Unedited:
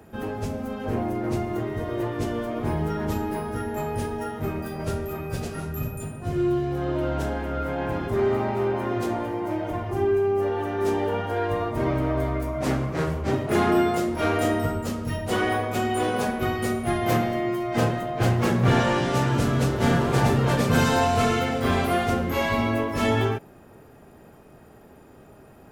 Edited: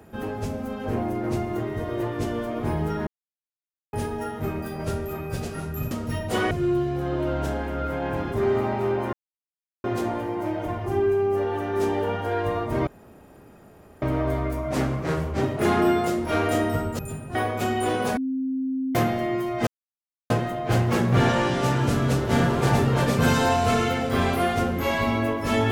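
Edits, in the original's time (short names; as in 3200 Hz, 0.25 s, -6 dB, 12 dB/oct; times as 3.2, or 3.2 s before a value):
3.07–3.93 mute
5.91–6.27 swap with 14.89–15.49
8.89 insert silence 0.71 s
11.92 insert room tone 1.15 s
16.31–17.09 bleep 263 Hz -23.5 dBFS
17.81 insert silence 0.63 s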